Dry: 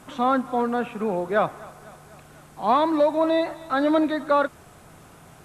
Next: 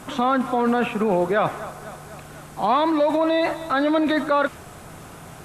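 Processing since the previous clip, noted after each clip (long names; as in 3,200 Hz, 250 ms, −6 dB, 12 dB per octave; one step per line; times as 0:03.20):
dynamic equaliser 2,600 Hz, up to +5 dB, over −38 dBFS, Q 0.99
in parallel at 0 dB: compressor whose output falls as the input rises −26 dBFS, ratio −0.5
on the sum: level −1.5 dB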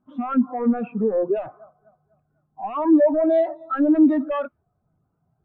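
parametric band 160 Hz −2.5 dB 0.25 octaves
sine wavefolder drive 9 dB, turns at −8 dBFS
every bin expanded away from the loudest bin 2.5 to 1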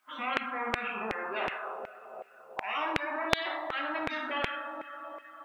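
coupled-rooms reverb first 0.49 s, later 3.5 s, from −28 dB, DRR −1 dB
auto-filter high-pass saw down 2.7 Hz 680–2,200 Hz
every bin compressed towards the loudest bin 4 to 1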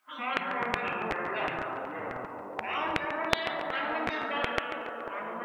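delay with pitch and tempo change per echo 134 ms, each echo −5 semitones, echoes 3, each echo −6 dB
on a send: tape delay 142 ms, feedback 62%, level −9 dB, low-pass 4,100 Hz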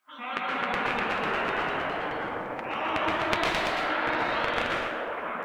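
flanger 1.5 Hz, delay 4.8 ms, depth 6.1 ms, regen −48%
dense smooth reverb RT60 0.84 s, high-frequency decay 0.75×, pre-delay 110 ms, DRR −1.5 dB
delay with pitch and tempo change per echo 289 ms, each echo +1 semitone, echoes 3
level +1.5 dB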